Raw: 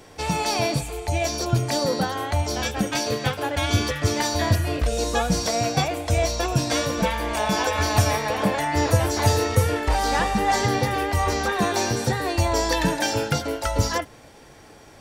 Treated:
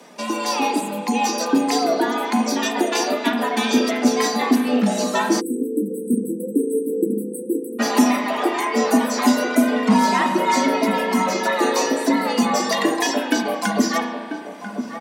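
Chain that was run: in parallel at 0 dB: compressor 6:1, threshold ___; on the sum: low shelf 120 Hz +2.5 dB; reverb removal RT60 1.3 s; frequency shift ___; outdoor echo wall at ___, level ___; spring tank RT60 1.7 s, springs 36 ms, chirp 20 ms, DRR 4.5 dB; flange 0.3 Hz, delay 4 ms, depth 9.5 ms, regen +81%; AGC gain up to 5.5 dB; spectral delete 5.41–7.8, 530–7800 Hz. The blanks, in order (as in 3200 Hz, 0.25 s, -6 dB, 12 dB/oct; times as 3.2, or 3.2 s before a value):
-31 dBFS, +150 Hz, 170 m, -9 dB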